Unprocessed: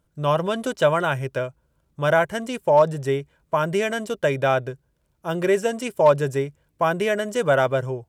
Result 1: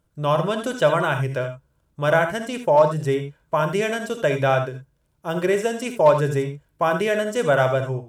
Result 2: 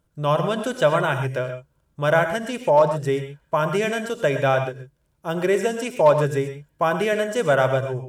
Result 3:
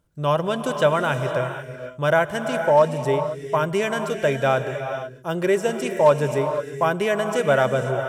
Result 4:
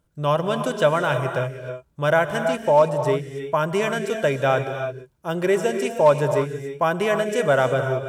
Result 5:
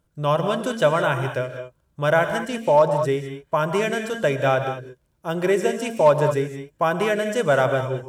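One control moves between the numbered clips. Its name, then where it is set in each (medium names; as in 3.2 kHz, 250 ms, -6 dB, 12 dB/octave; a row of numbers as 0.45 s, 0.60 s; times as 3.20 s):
gated-style reverb, gate: 100 ms, 150 ms, 520 ms, 350 ms, 230 ms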